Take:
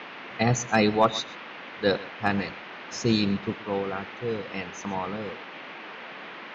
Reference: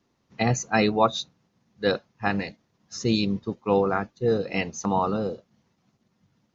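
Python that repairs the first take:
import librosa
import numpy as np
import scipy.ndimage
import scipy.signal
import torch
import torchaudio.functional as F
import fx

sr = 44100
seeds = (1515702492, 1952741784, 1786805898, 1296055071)

y = fx.fix_declip(x, sr, threshold_db=-8.5)
y = fx.noise_reduce(y, sr, print_start_s=1.32, print_end_s=1.82, reduce_db=29.0)
y = fx.fix_echo_inverse(y, sr, delay_ms=125, level_db=-19.5)
y = fx.gain(y, sr, db=fx.steps((0.0, 0.0), (3.6, 7.5)))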